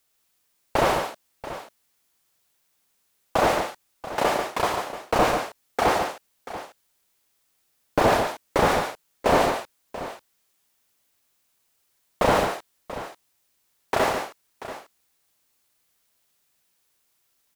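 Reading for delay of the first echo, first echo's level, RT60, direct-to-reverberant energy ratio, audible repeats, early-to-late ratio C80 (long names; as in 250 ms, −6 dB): 90 ms, −11.0 dB, no reverb audible, no reverb audible, 3, no reverb audible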